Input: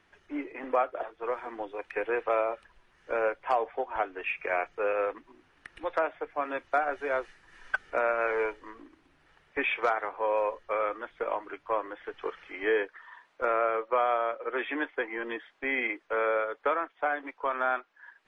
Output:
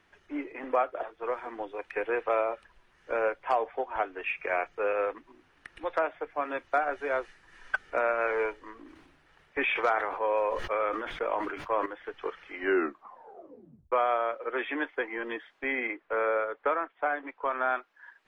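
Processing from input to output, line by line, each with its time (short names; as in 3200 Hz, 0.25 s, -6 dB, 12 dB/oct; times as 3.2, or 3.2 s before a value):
8.77–11.86 sustainer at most 45 dB/s
12.54 tape stop 1.38 s
15.72–17.67 LPF 2300 Hz -> 3300 Hz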